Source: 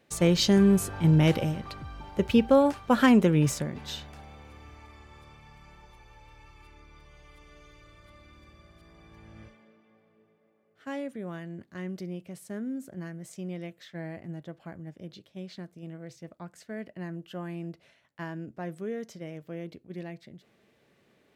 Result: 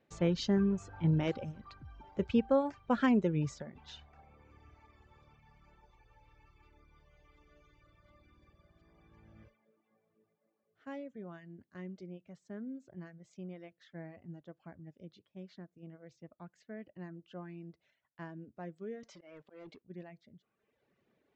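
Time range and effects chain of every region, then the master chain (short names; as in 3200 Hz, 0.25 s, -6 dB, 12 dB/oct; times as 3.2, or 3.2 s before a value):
19.03–19.82 weighting filter A + auto swell 0.193 s + sample leveller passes 3
whole clip: reverb removal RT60 1.1 s; steep low-pass 7500 Hz 72 dB/oct; high shelf 3300 Hz -10.5 dB; gain -7 dB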